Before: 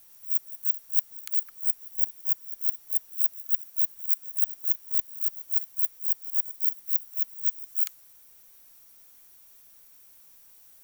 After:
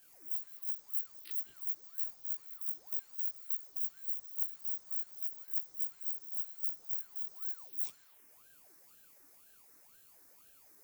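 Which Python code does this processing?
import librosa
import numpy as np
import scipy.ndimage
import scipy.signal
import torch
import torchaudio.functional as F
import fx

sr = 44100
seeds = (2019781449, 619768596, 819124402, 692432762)

y = fx.spec_steps(x, sr, hold_ms=50)
y = fx.chorus_voices(y, sr, voices=4, hz=0.52, base_ms=20, depth_ms=3.9, mix_pct=50)
y = fx.high_shelf(y, sr, hz=7000.0, db=-9.0)
y = fx.env_phaser(y, sr, low_hz=430.0, high_hz=2700.0, full_db=-43.5)
y = fx.ring_lfo(y, sr, carrier_hz=950.0, swing_pct=70, hz=2.0)
y = F.gain(torch.from_numpy(y), 9.0).numpy()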